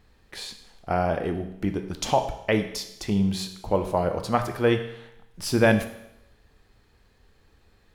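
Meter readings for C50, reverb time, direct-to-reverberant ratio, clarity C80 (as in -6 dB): 9.5 dB, 0.85 s, 6.0 dB, 11.5 dB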